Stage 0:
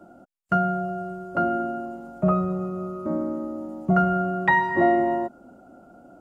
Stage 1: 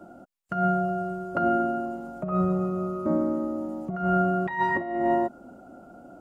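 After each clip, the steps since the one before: compressor with a negative ratio -23 dBFS, ratio -0.5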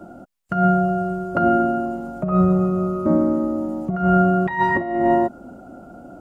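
bass shelf 180 Hz +6.5 dB; trim +5.5 dB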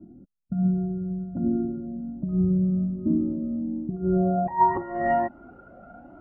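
low-pass sweep 240 Hz -> 1.9 kHz, 3.84–5.13 s; Shepard-style flanger rising 1.3 Hz; trim -3 dB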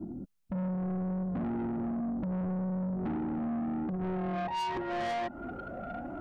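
compression 6:1, threshold -31 dBFS, peak gain reduction 15 dB; saturation -39.5 dBFS, distortion -8 dB; trim +8.5 dB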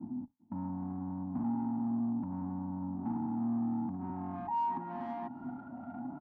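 octave divider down 1 oct, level +3 dB; two resonant band-passes 470 Hz, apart 1.8 oct; feedback delay 393 ms, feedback 54%, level -22.5 dB; trim +4.5 dB

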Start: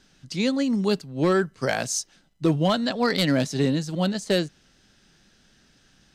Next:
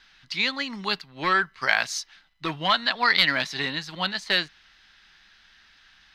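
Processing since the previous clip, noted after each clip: ten-band graphic EQ 125 Hz -11 dB, 250 Hz -8 dB, 500 Hz -10 dB, 1 kHz +8 dB, 2 kHz +10 dB, 4 kHz +9 dB, 8 kHz -11 dB; trim -2 dB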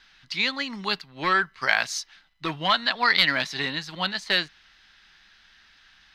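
no audible change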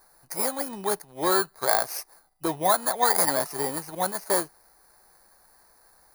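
bit-reversed sample order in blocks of 16 samples; high-order bell 560 Hz +10.5 dB; trim -3 dB

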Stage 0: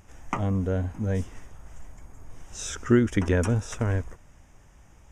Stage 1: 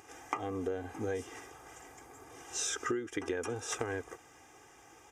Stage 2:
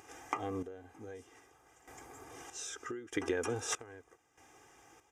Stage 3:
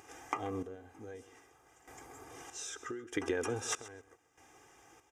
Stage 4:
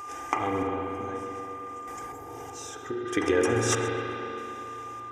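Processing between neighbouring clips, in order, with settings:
high-pass 270 Hz 12 dB/octave; comb 2.5 ms, depth 78%; compression 12:1, threshold -34 dBFS, peak gain reduction 20 dB; trim +2.5 dB
random-step tremolo 1.6 Hz, depth 85%; trim +1.5 dB
feedback delay 132 ms, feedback 16%, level -17 dB
spring tank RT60 3.4 s, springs 35/44 ms, chirp 50 ms, DRR 0 dB; whistle 1.2 kHz -45 dBFS; time-frequency box 2.12–3.06 s, 1–11 kHz -7 dB; trim +8 dB

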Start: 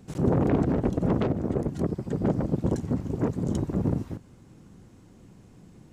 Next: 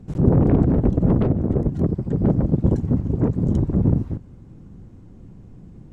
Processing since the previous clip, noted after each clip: tilt EQ -3 dB/octave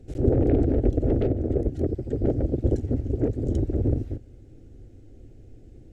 static phaser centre 430 Hz, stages 4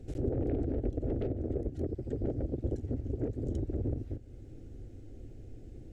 compression 2:1, threshold -38 dBFS, peak gain reduction 13 dB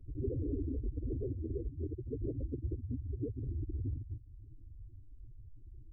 spectral contrast enhancement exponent 2.8; trim -3.5 dB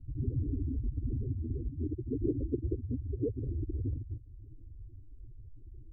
low-pass sweep 190 Hz -> 550 Hz, 1.40–3.03 s; trim +2.5 dB

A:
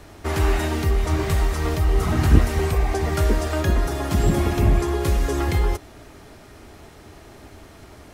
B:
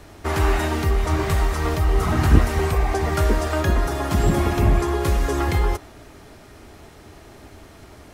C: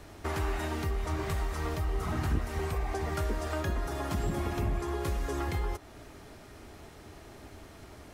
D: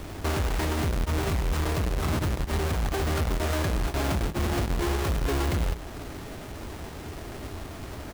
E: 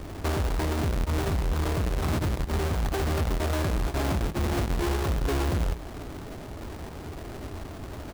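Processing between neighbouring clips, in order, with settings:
dynamic bell 1.1 kHz, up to +4 dB, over -42 dBFS, Q 0.86
compression 2:1, threshold -29 dBFS, peak gain reduction 12 dB; trim -5 dB
square wave that keeps the level; peak limiter -29 dBFS, peak gain reduction 35.5 dB; delay 144 ms -14 dB; trim +6 dB
median filter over 25 samples

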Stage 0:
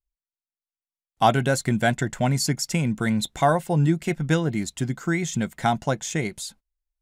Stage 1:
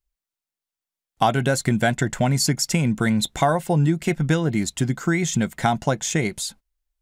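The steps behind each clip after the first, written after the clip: compression 3:1, threshold -22 dBFS, peak gain reduction 7.5 dB; trim +5.5 dB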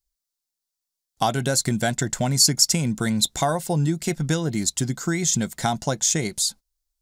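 resonant high shelf 3.5 kHz +8 dB, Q 1.5; trim -3 dB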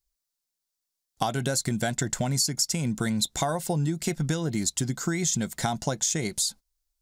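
compression 5:1, threshold -23 dBFS, peak gain reduction 10.5 dB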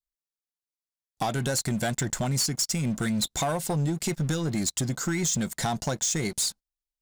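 waveshaping leveller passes 3; trim -9 dB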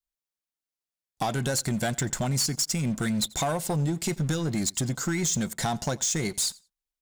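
feedback delay 88 ms, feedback 17%, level -23.5 dB

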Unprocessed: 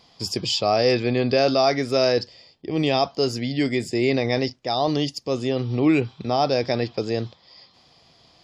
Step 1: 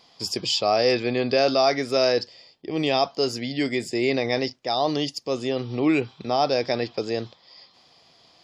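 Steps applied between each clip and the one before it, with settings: bass shelf 160 Hz -11.5 dB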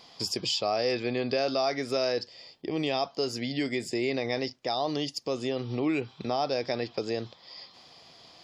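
compression 2:1, threshold -36 dBFS, peak gain reduction 11.5 dB; trim +3 dB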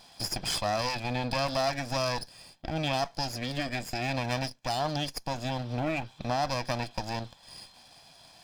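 comb filter that takes the minimum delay 1.2 ms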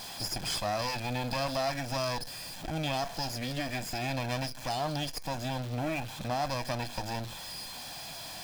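jump at every zero crossing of -33 dBFS; flange 1.6 Hz, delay 6.2 ms, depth 1.1 ms, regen -86%

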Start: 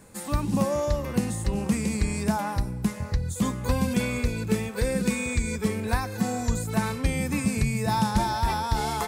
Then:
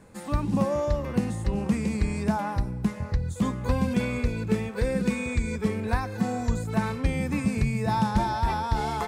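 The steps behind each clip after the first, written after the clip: low-pass 2.7 kHz 6 dB/octave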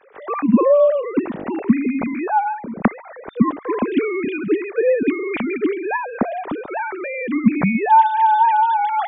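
formants replaced by sine waves; trim +7.5 dB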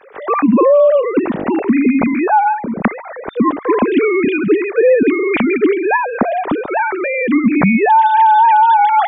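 peak limiter -13 dBFS, peak gain reduction 11 dB; trim +8.5 dB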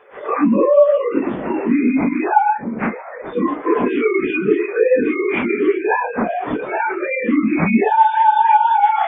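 phase randomisation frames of 100 ms; trim -3.5 dB

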